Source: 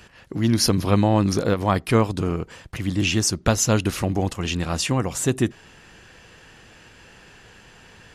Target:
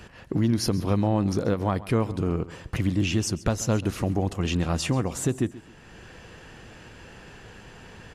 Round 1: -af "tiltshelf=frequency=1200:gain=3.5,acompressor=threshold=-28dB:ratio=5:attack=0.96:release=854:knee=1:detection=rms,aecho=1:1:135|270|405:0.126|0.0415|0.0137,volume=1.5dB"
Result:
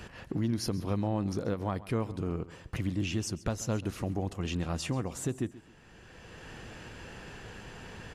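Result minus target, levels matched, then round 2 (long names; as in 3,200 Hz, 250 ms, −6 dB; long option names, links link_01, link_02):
downward compressor: peak gain reduction +7.5 dB
-af "tiltshelf=frequency=1200:gain=3.5,acompressor=threshold=-18.5dB:ratio=5:attack=0.96:release=854:knee=1:detection=rms,aecho=1:1:135|270|405:0.126|0.0415|0.0137,volume=1.5dB"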